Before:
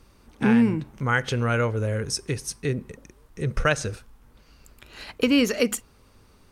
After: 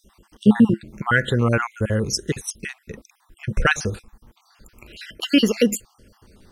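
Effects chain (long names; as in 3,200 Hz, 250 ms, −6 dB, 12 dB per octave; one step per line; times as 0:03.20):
time-frequency cells dropped at random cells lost 50%
hollow resonant body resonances 210/340/1,700/3,100 Hz, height 6 dB, ringing for 95 ms
level +5 dB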